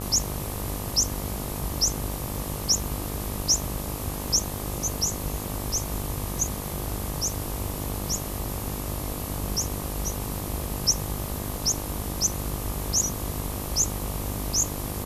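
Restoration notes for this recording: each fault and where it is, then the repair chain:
buzz 50 Hz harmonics 25 -34 dBFS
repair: de-hum 50 Hz, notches 25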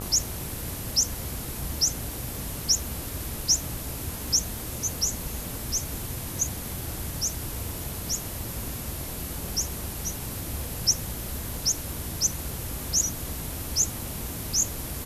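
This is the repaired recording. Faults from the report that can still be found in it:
nothing left

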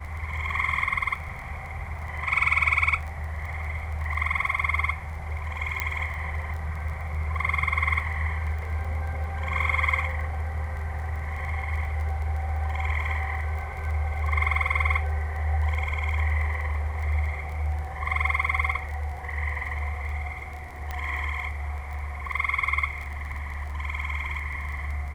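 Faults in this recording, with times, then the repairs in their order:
crackle 21 per s -34 dBFS
5.80 s: pop -11 dBFS
20.91 s: pop -18 dBFS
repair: de-click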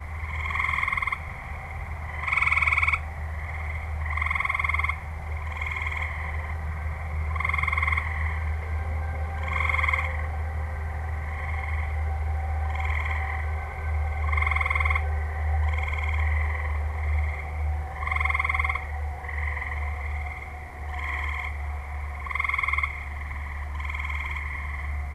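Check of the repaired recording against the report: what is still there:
20.91 s: pop

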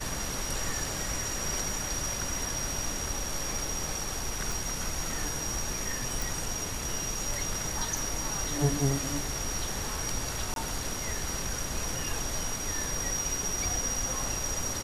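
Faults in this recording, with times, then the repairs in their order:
4.52 s: pop
6.22 s: pop
10.54–10.56 s: dropout 22 ms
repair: de-click; interpolate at 10.54 s, 22 ms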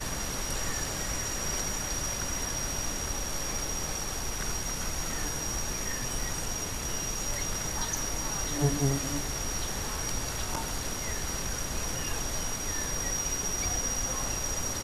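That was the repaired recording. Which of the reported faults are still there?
nothing left

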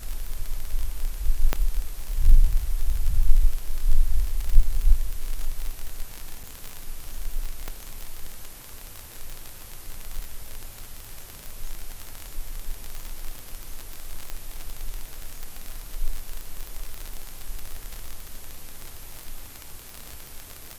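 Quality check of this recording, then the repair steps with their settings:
crackle 41 per s -25 dBFS
1.53 s: pop -8 dBFS
6.43–6.44 s: dropout 6.8 ms
7.68 s: pop -17 dBFS
14.30 s: pop -16 dBFS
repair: de-click; interpolate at 6.43 s, 6.8 ms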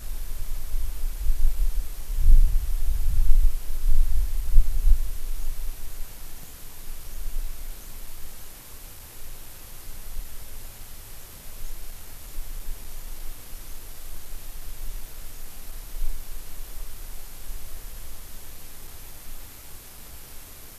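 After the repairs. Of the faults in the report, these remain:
nothing left

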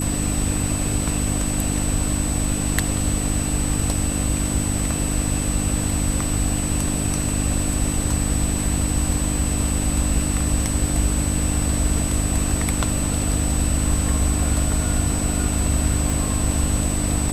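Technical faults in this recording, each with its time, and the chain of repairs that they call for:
hum 50 Hz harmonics 6 -25 dBFS
whine 8 kHz -27 dBFS
16.10 s: pop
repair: de-click; band-stop 8 kHz, Q 30; de-hum 50 Hz, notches 6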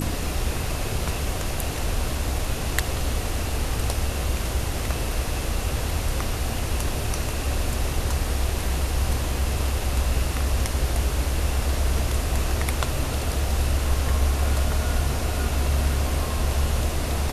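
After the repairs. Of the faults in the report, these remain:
16.10 s: pop

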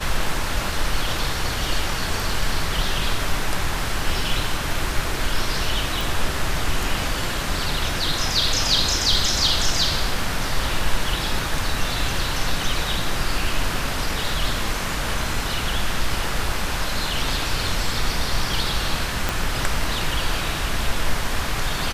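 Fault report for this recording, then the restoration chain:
6.01 s: pop
19.29 s: pop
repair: de-click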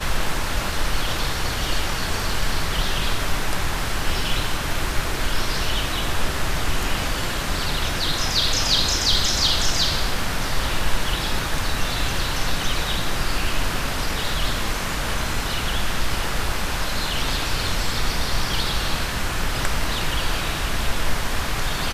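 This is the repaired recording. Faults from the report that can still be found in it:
19.29 s: pop

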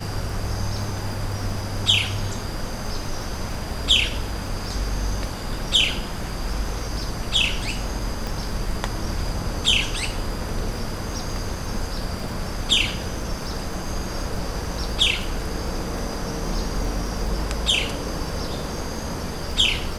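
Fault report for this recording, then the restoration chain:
crackle 22 per s -32 dBFS
8.27 s: pop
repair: de-click

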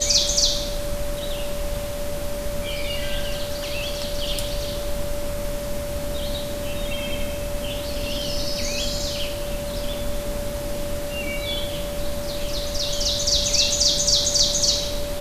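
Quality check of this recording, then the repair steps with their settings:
whine 580 Hz -29 dBFS
9.93 s: dropout 2.7 ms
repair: band-stop 580 Hz, Q 30; interpolate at 9.93 s, 2.7 ms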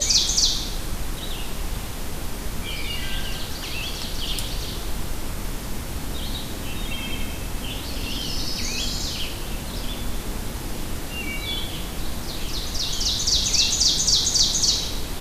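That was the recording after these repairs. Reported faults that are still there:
nothing left

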